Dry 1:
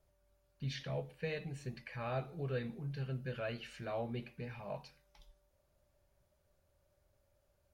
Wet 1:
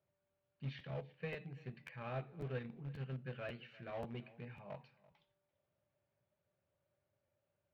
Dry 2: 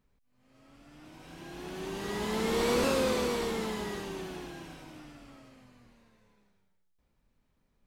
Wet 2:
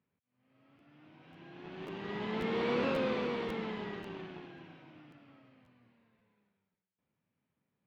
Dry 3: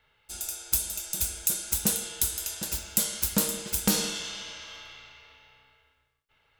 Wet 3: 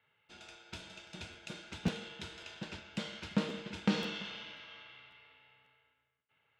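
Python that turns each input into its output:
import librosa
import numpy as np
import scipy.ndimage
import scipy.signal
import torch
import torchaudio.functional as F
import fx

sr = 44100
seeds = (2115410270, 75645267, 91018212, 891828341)

p1 = scipy.signal.sosfilt(scipy.signal.butter(4, 110.0, 'highpass', fs=sr, output='sos'), x)
p2 = np.where(np.abs(p1) >= 10.0 ** (-35.5 / 20.0), p1, 0.0)
p3 = p1 + F.gain(torch.from_numpy(p2), -7.0).numpy()
p4 = fx.ladder_lowpass(p3, sr, hz=3700.0, resonance_pct=25)
p5 = fx.low_shelf(p4, sr, hz=190.0, db=5.5)
p6 = p5 + fx.echo_single(p5, sr, ms=338, db=-21.0, dry=0)
p7 = fx.buffer_crackle(p6, sr, first_s=0.78, period_s=0.54, block=512, kind='repeat')
y = F.gain(torch.from_numpy(p7), -2.5).numpy()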